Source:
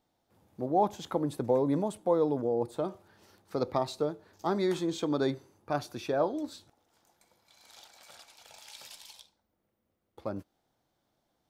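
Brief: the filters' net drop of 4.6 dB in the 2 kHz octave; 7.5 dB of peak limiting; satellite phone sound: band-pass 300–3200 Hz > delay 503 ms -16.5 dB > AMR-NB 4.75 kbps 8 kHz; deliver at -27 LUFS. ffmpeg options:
-af "equalizer=f=2000:t=o:g=-6,alimiter=limit=0.075:level=0:latency=1,highpass=300,lowpass=3200,aecho=1:1:503:0.15,volume=3.35" -ar 8000 -c:a libopencore_amrnb -b:a 4750

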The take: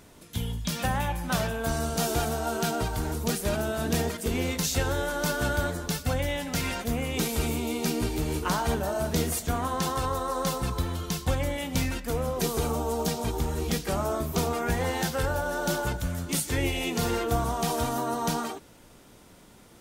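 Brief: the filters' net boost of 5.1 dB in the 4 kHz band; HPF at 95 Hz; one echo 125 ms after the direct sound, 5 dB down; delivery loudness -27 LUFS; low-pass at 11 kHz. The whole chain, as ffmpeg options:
-af "highpass=95,lowpass=11000,equalizer=f=4000:t=o:g=6.5,aecho=1:1:125:0.562"

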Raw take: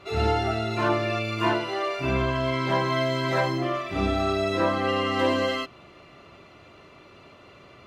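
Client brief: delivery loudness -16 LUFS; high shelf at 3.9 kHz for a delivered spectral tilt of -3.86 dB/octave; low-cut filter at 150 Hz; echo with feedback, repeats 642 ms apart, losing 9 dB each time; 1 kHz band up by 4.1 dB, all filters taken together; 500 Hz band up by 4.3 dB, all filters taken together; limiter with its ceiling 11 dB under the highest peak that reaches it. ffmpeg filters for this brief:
-af "highpass=150,equalizer=f=500:t=o:g=4.5,equalizer=f=1000:t=o:g=4,highshelf=f=3900:g=-3.5,alimiter=limit=0.119:level=0:latency=1,aecho=1:1:642|1284|1926|2568:0.355|0.124|0.0435|0.0152,volume=3.55"

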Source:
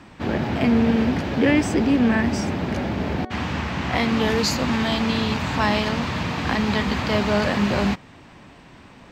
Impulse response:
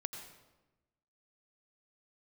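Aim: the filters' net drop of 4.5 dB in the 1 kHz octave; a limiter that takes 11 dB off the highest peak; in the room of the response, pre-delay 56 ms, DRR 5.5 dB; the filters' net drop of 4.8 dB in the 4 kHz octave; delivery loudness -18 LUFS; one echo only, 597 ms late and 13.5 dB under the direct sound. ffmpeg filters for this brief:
-filter_complex "[0:a]equalizer=f=1000:t=o:g=-5.5,equalizer=f=4000:t=o:g=-6,alimiter=limit=0.119:level=0:latency=1,aecho=1:1:597:0.211,asplit=2[s0][s1];[1:a]atrim=start_sample=2205,adelay=56[s2];[s1][s2]afir=irnorm=-1:irlink=0,volume=0.596[s3];[s0][s3]amix=inputs=2:normalize=0,volume=2.51"

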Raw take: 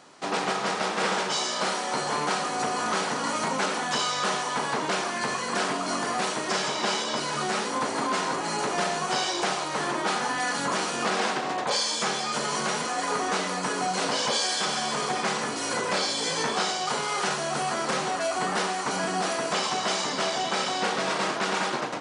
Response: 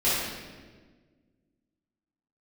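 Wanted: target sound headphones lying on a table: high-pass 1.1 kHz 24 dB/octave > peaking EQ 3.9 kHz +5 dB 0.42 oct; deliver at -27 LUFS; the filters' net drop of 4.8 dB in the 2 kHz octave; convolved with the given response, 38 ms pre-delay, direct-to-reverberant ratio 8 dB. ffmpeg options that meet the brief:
-filter_complex "[0:a]equalizer=f=2000:t=o:g=-6.5,asplit=2[s0][s1];[1:a]atrim=start_sample=2205,adelay=38[s2];[s1][s2]afir=irnorm=-1:irlink=0,volume=0.0794[s3];[s0][s3]amix=inputs=2:normalize=0,highpass=f=1100:w=0.5412,highpass=f=1100:w=1.3066,equalizer=f=3900:t=o:w=0.42:g=5,volume=1.19"

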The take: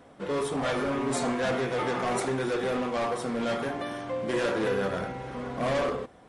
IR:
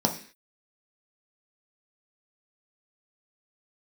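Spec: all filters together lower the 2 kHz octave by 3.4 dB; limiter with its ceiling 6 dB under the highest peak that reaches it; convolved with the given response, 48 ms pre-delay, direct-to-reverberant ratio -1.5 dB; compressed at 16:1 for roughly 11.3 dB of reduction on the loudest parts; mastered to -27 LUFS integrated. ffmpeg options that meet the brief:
-filter_complex "[0:a]equalizer=f=2000:t=o:g=-4.5,acompressor=threshold=0.0158:ratio=16,alimiter=level_in=3.16:limit=0.0631:level=0:latency=1,volume=0.316,asplit=2[s0][s1];[1:a]atrim=start_sample=2205,adelay=48[s2];[s1][s2]afir=irnorm=-1:irlink=0,volume=0.316[s3];[s0][s3]amix=inputs=2:normalize=0,volume=2.37"

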